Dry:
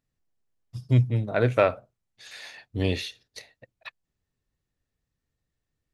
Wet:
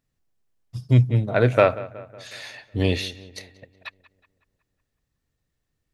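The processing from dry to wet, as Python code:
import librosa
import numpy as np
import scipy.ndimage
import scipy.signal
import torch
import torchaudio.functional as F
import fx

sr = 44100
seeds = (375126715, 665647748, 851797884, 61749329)

y = fx.echo_filtered(x, sr, ms=184, feedback_pct=54, hz=3200.0, wet_db=-18.0)
y = y * librosa.db_to_amplitude(4.0)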